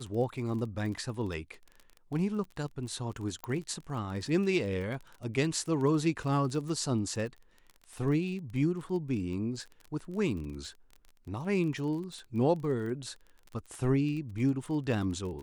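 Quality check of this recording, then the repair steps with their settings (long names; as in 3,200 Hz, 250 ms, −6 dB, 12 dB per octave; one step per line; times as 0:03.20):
surface crackle 28 per second −38 dBFS
0:03.44: click −22 dBFS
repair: click removal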